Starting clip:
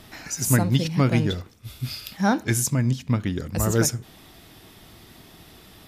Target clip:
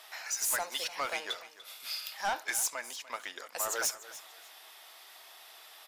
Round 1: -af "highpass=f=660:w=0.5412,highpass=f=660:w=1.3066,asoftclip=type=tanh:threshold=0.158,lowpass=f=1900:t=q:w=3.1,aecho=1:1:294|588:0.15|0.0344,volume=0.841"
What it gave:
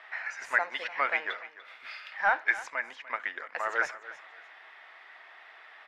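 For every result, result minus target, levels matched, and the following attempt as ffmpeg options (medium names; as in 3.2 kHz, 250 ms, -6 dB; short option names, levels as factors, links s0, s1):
2 kHz band +6.5 dB; saturation: distortion -9 dB
-af "highpass=f=660:w=0.5412,highpass=f=660:w=1.3066,asoftclip=type=tanh:threshold=0.158,aecho=1:1:294|588:0.15|0.0344,volume=0.841"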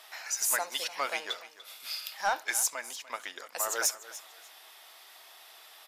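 saturation: distortion -9 dB
-af "highpass=f=660:w=0.5412,highpass=f=660:w=1.3066,asoftclip=type=tanh:threshold=0.0631,aecho=1:1:294|588:0.15|0.0344,volume=0.841"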